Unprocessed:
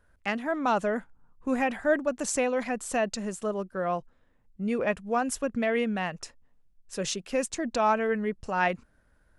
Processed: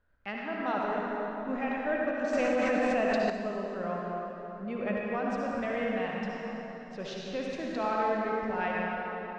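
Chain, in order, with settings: low-pass 4.4 kHz 24 dB/octave; reverberation RT60 3.9 s, pre-delay 53 ms, DRR -3.5 dB; 2.33–3.30 s: level flattener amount 100%; trim -8.5 dB

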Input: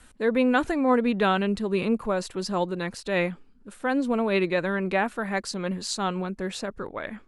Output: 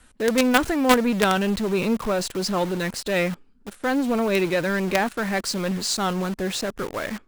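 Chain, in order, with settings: dynamic bell 6.5 kHz, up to +3 dB, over -42 dBFS, Q 0.83; in parallel at -4.5 dB: companded quantiser 2-bit; on the sum: trim -1 dB

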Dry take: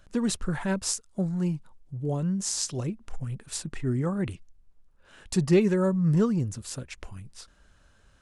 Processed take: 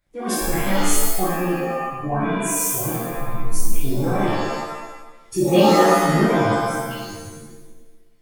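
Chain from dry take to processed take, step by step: spectral noise reduction 17 dB; formant shift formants +4 st; pitch-shifted reverb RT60 1 s, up +7 st, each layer -2 dB, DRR -7 dB; trim -1 dB

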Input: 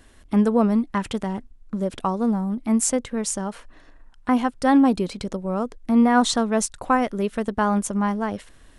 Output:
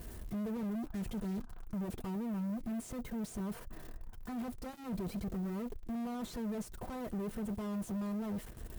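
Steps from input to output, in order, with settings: zero-crossing glitches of -18.5 dBFS; spectral replace 0.82–1.62 s, 660–1700 Hz after; valve stage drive 45 dB, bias 0.3; tilt shelf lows +7.5 dB, about 790 Hz; comb of notches 280 Hz; trim +4 dB

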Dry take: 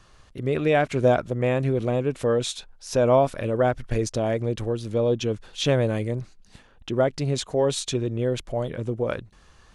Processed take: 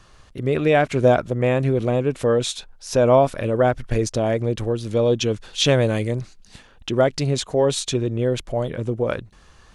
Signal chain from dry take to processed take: 4.86–7.27 s: peaking EQ 5.7 kHz +5 dB 2.9 oct; trim +3.5 dB

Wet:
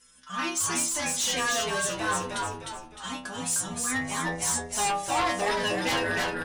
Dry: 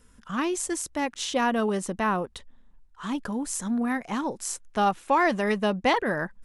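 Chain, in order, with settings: low-pass 9.8 kHz 24 dB/octave; tilt EQ +3.5 dB/octave; inharmonic resonator 60 Hz, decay 0.82 s, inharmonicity 0.008; in parallel at -4 dB: sine folder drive 12 dB, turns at -20 dBFS; on the sum: frequency-shifting echo 306 ms, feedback 41%, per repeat -86 Hz, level -3 dB; trim -2.5 dB

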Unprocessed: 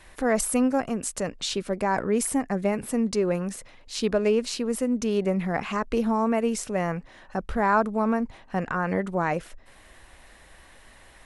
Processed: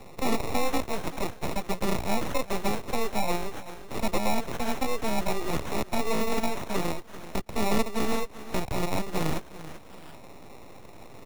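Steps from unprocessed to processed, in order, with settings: high-pass 110 Hz 12 dB/octave; sample-and-hold 28×; feedback delay 385 ms, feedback 28%, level -18 dB; full-wave rectifier; three bands compressed up and down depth 40%

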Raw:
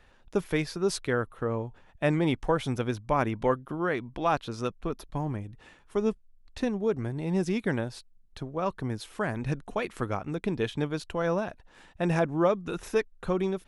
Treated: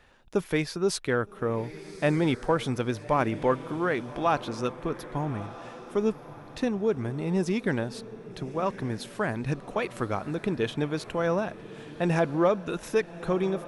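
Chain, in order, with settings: bass shelf 65 Hz -8 dB; echo that smears into a reverb 1190 ms, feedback 41%, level -15 dB; in parallel at -11 dB: saturation -22.5 dBFS, distortion -13 dB

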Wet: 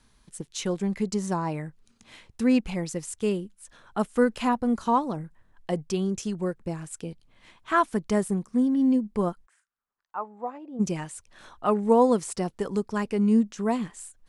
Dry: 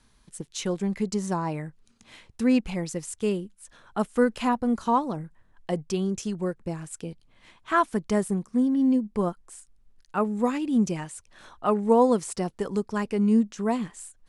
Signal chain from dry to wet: 9.45–10.79 s: band-pass filter 1.8 kHz -> 560 Hz, Q 3.1

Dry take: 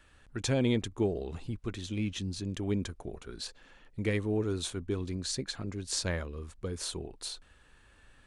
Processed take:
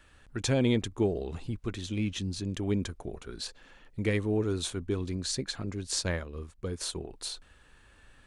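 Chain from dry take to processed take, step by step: 5.87–7.08 s: transient shaper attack -1 dB, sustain -8 dB; trim +2 dB

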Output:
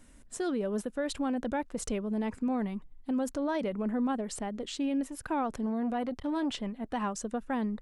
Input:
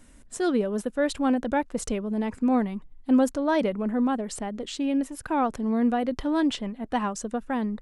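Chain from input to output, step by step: peak limiter -20.5 dBFS, peak gain reduction 8.5 dB; 5.66–6.56 s: transformer saturation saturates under 260 Hz; trim -3.5 dB

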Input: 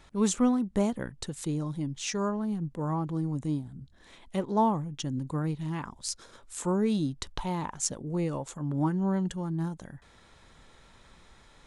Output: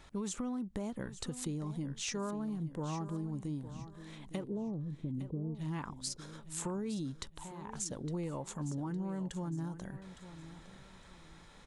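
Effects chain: 4.44–5.55 s: inverse Chebyshev low-pass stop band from 2.3 kHz, stop band 70 dB; 7.26–7.70 s: level held to a coarse grid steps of 23 dB; peak limiter -22.5 dBFS, peak gain reduction 10.5 dB; compression, threshold -34 dBFS, peak gain reduction 8 dB; feedback delay 860 ms, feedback 31%, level -13 dB; trim -1 dB

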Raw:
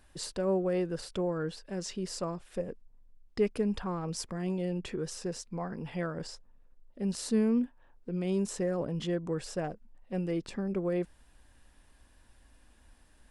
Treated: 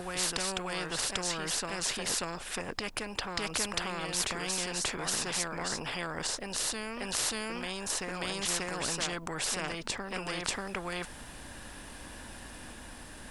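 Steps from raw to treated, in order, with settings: reverse echo 587 ms -5 dB; spectrum-flattening compressor 4:1; trim +5 dB

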